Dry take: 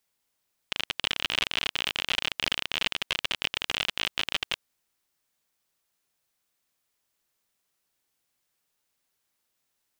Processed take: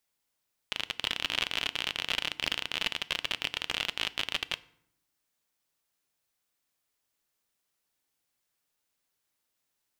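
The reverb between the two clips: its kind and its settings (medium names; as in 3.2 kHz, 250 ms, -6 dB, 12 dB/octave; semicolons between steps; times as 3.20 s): FDN reverb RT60 0.71 s, low-frequency decay 1.45×, high-frequency decay 0.7×, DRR 15.5 dB; trim -3 dB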